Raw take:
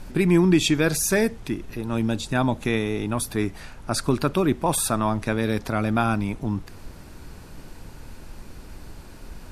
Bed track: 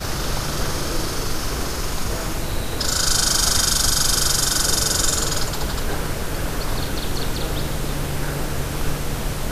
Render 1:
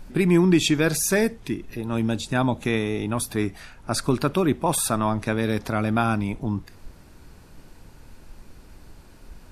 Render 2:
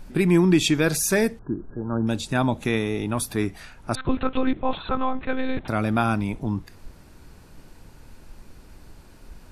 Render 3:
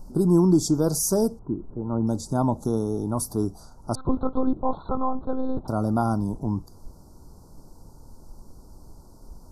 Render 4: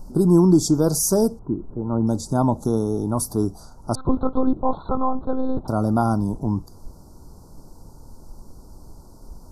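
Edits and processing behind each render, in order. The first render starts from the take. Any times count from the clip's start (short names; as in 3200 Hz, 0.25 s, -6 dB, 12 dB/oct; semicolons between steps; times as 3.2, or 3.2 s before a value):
noise print and reduce 6 dB
1.39–2.07 brick-wall FIR low-pass 1700 Hz; 3.95–5.68 monotone LPC vocoder at 8 kHz 260 Hz
elliptic band-stop 1000–5100 Hz, stop band 80 dB; bell 1400 Hz +10.5 dB 0.27 oct
gain +3.5 dB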